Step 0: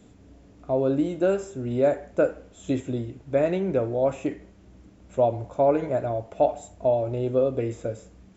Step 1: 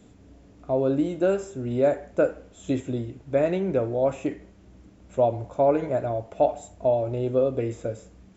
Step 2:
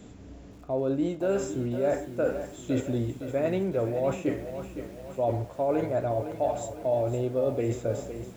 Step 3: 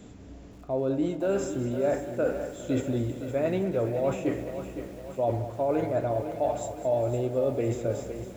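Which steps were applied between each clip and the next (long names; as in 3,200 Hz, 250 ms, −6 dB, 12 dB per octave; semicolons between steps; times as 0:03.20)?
no processing that can be heard
reversed playback; downward compressor 5 to 1, threshold −30 dBFS, peak gain reduction 13.5 dB; reversed playback; feedback echo at a low word length 511 ms, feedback 55%, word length 9 bits, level −10 dB; level +5 dB
echo with a time of its own for lows and highs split 320 Hz, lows 134 ms, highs 203 ms, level −13 dB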